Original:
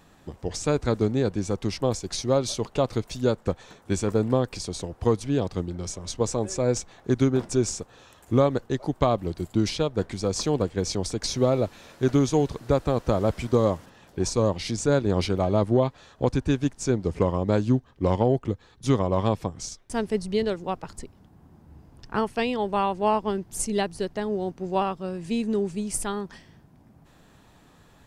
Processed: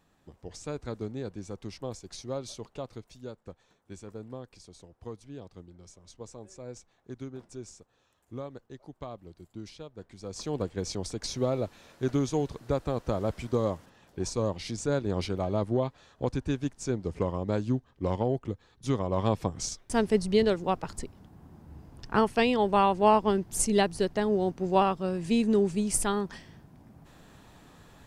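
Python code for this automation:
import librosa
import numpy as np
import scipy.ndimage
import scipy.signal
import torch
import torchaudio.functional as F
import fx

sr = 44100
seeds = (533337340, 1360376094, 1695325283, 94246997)

y = fx.gain(x, sr, db=fx.line((2.55, -12.5), (3.33, -19.0), (10.05, -19.0), (10.6, -6.5), (19.01, -6.5), (19.61, 1.5)))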